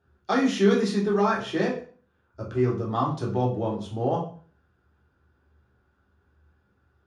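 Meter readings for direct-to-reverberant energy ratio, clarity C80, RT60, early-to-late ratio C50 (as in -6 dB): -4.5 dB, 11.5 dB, 0.40 s, 7.0 dB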